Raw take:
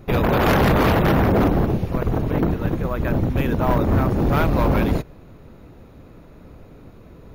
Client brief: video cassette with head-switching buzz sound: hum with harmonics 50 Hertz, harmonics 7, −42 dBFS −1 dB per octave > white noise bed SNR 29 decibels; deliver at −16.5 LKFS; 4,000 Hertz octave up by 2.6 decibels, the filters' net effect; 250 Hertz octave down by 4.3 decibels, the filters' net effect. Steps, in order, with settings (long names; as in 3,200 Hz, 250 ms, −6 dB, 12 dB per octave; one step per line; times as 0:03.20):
parametric band 250 Hz −6 dB
parametric band 4,000 Hz +3.5 dB
hum with harmonics 50 Hz, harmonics 7, −42 dBFS −1 dB per octave
white noise bed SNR 29 dB
level +4.5 dB